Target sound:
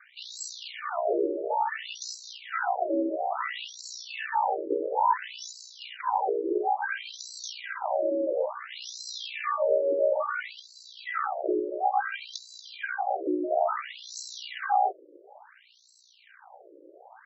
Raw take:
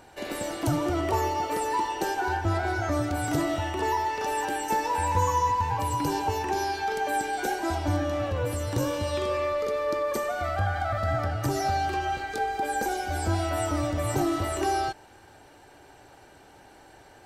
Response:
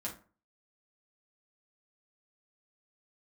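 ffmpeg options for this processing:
-af "aeval=exprs='val(0)*sin(2*PI*30*n/s)':c=same,acontrast=32,afftfilt=real='re*between(b*sr/1024,400*pow(5600/400,0.5+0.5*sin(2*PI*0.58*pts/sr))/1.41,400*pow(5600/400,0.5+0.5*sin(2*PI*0.58*pts/sr))*1.41)':imag='im*between(b*sr/1024,400*pow(5600/400,0.5+0.5*sin(2*PI*0.58*pts/sr))/1.41,400*pow(5600/400,0.5+0.5*sin(2*PI*0.58*pts/sr))*1.41)':win_size=1024:overlap=0.75,volume=3.5dB"

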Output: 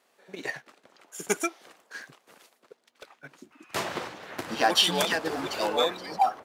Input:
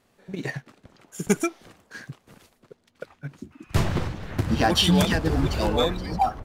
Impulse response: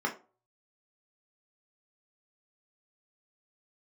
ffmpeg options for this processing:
-filter_complex "[0:a]highpass=460,asettb=1/sr,asplit=3[a][b][c];[a]atrim=end=2.004[d];[b]atrim=start=2:end=3.13,asetpts=PTS-STARTPTS,afade=t=in:d=0.004:c=qsin,afade=t=out:st=1.126:d=0.004:c=qsin,aeval=exprs='0.0158*(abs(mod(val(0)/0.0158+3,4)-2)-1)':c=same[e];[c]atrim=start=3.126[f];[d][e]acrossfade=d=0.004:c1=hsin:c2=qsin[g];[g][f]acrossfade=d=0.004:c1=qsin:c2=hsin"

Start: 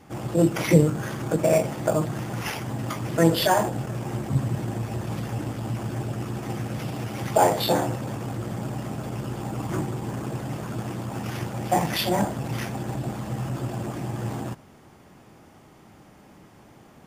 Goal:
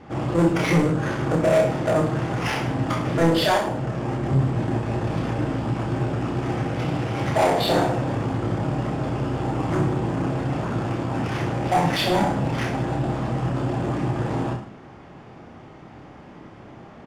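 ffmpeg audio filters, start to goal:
-filter_complex "[0:a]highshelf=f=6.7k:g=-10,bandreject=f=50:t=h:w=6,bandreject=f=100:t=h:w=6,bandreject=f=150:t=h:w=6,bandreject=f=200:t=h:w=6,asplit=2[a][b];[b]alimiter=limit=-14.5dB:level=0:latency=1:release=370,volume=0.5dB[c];[a][c]amix=inputs=2:normalize=0,asettb=1/sr,asplit=3[d][e][f];[d]atrim=end=3.574[g];[e]atrim=start=3.57:end=4.23,asetpts=PTS-STARTPTS,afade=t=in:d=0.004:c=qsin,afade=t=out:st=0.656:d=0.004:c=qsin,acompressor=threshold=-22dB:ratio=6[h];[f]atrim=start=4.226[i];[g][h]acrossfade=d=0.004:c1=hsin:c2=qsin[j];[j][i]acrossfade=d=0.004:c1=qsin:c2=hsin,asoftclip=type=tanh:threshold=-16.5dB,adynamicsmooth=sensitivity=5:basefreq=4.9k,aecho=1:1:30|64.5|104.2|149.8|202.3:0.631|0.398|0.251|0.158|0.1"

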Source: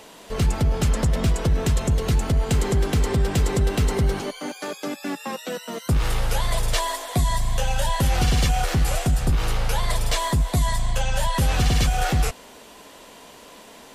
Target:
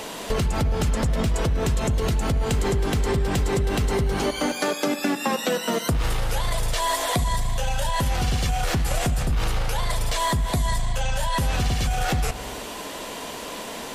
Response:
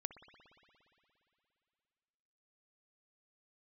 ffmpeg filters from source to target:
-filter_complex "[0:a]alimiter=limit=-19dB:level=0:latency=1,acompressor=threshold=-31dB:ratio=6,asplit=2[a][b];[1:a]atrim=start_sample=2205,afade=t=out:st=0.45:d=0.01,atrim=end_sample=20286[c];[b][c]afir=irnorm=-1:irlink=0,volume=8dB[d];[a][d]amix=inputs=2:normalize=0,volume=2.5dB"

